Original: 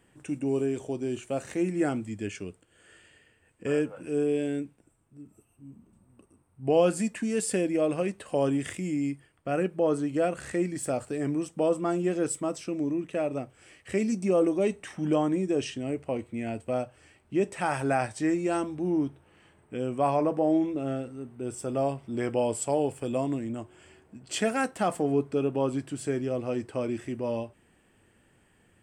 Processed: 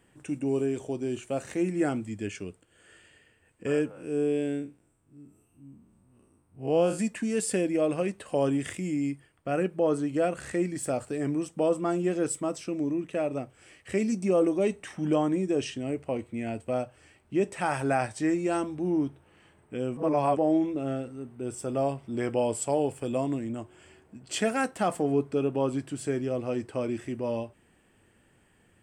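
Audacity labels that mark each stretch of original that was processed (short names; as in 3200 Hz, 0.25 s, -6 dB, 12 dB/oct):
3.910000	6.990000	time blur width 0.104 s
19.970000	20.370000	reverse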